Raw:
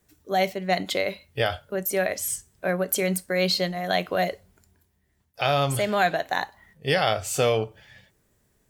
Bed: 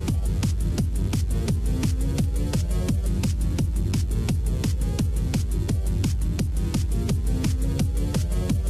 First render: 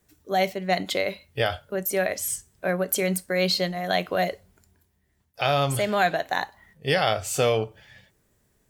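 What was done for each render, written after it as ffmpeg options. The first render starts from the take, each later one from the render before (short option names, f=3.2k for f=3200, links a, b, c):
-af anull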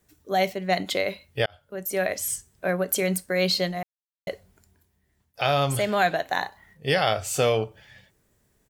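-filter_complex "[0:a]asplit=3[a][b][c];[a]afade=t=out:st=6.43:d=0.02[d];[b]asplit=2[e][f];[f]adelay=33,volume=-7dB[g];[e][g]amix=inputs=2:normalize=0,afade=t=in:st=6.43:d=0.02,afade=t=out:st=6.87:d=0.02[h];[c]afade=t=in:st=6.87:d=0.02[i];[d][h][i]amix=inputs=3:normalize=0,asplit=4[j][k][l][m];[j]atrim=end=1.46,asetpts=PTS-STARTPTS,afade=t=out:st=1.456:d=0.004:c=hsin[n];[k]atrim=start=1.46:end=3.83,asetpts=PTS-STARTPTS,afade=t=in:d=0.61,afade=t=out:st=2.366:d=0.004:c=hsin[o];[l]atrim=start=3.83:end=4.27,asetpts=PTS-STARTPTS,volume=0[p];[m]atrim=start=4.27,asetpts=PTS-STARTPTS,afade=t=in:d=0.004:c=hsin[q];[n][o][p][q]concat=n=4:v=0:a=1"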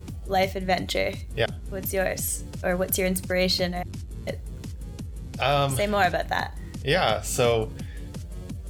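-filter_complex "[1:a]volume=-12.5dB[a];[0:a][a]amix=inputs=2:normalize=0"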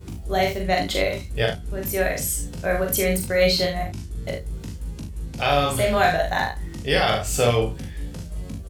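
-filter_complex "[0:a]asplit=2[a][b];[b]adelay=18,volume=-6.5dB[c];[a][c]amix=inputs=2:normalize=0,aecho=1:1:42|75:0.708|0.335"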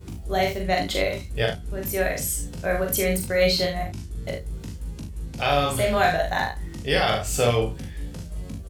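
-af "volume=-1.5dB"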